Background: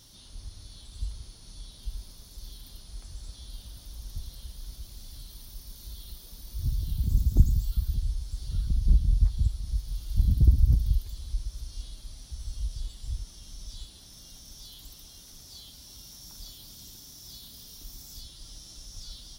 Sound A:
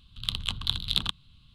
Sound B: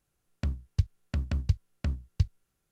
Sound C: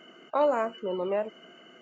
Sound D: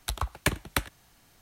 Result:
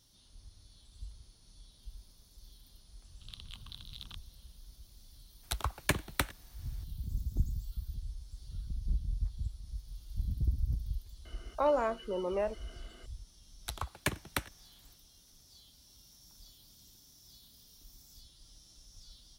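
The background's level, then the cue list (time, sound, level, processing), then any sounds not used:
background -12 dB
3.05 add A -11.5 dB + compressor 3:1, threshold -33 dBFS
5.43 add D -3.5 dB + block floating point 7-bit
11.25 add C -4 dB
13.6 add D -6.5 dB, fades 0.10 s + HPF 59 Hz
not used: B

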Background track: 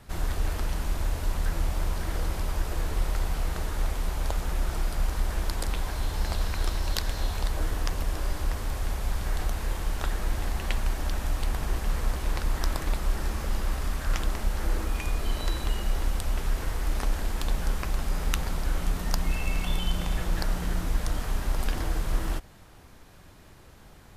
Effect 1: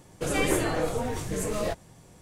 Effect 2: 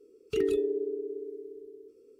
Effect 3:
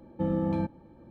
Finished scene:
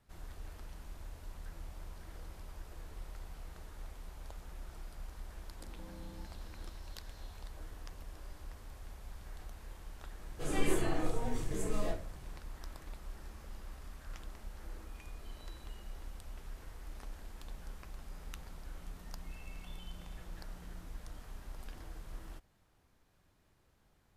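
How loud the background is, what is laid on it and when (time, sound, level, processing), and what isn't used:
background track -19.5 dB
5.6 add 3 -8 dB + compressor 4:1, threshold -45 dBFS
10.18 add 1 -17.5 dB + shoebox room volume 180 m³, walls furnished, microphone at 3.9 m
not used: 2

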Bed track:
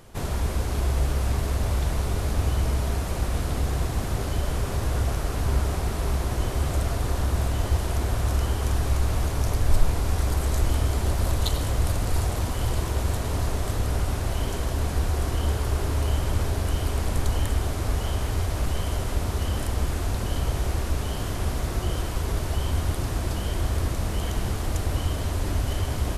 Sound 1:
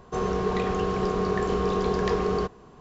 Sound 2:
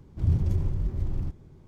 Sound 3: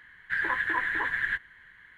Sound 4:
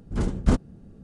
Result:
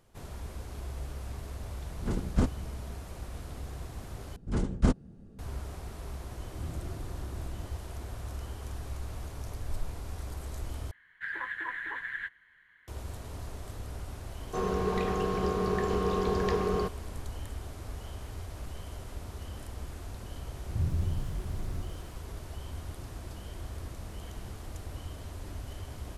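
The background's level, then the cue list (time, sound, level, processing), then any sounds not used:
bed track -15 dB
1.9 add 4 -6 dB
4.36 replace with 4 -4 dB
6.35 add 2 -17 dB + synth low-pass 340 Hz
10.91 replace with 3 -8 dB + low shelf 400 Hz -4.5 dB
14.41 add 1 -4 dB
20.52 add 2 -7 dB + lo-fi delay 0.147 s, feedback 35%, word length 8-bit, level -9.5 dB

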